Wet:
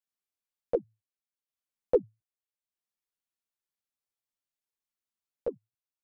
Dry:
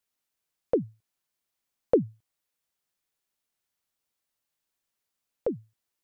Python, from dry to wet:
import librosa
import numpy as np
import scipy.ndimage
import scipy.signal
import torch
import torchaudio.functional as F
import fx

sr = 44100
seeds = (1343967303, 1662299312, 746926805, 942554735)

y = fx.transient(x, sr, attack_db=9, sustain_db=-5)
y = fx.ensemble(y, sr)
y = y * librosa.db_to_amplitude(-8.5)